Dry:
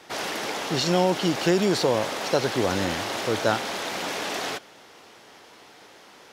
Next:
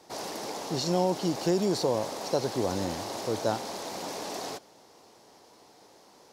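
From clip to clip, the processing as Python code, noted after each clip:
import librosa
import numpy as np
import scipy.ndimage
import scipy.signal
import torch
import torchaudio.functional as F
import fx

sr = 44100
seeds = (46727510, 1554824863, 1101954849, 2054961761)

y = fx.band_shelf(x, sr, hz=2100.0, db=-9.5, octaves=1.7)
y = y * librosa.db_to_amplitude(-4.5)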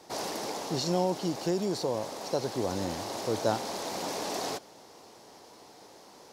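y = fx.rider(x, sr, range_db=10, speed_s=2.0)
y = y * librosa.db_to_amplitude(-2.0)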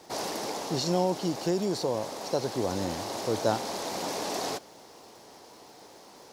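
y = fx.dmg_crackle(x, sr, seeds[0], per_s=570.0, level_db=-53.0)
y = y * librosa.db_to_amplitude(1.5)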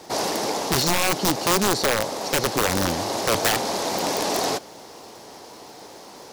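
y = (np.mod(10.0 ** (22.0 / 20.0) * x + 1.0, 2.0) - 1.0) / 10.0 ** (22.0 / 20.0)
y = y * librosa.db_to_amplitude(8.5)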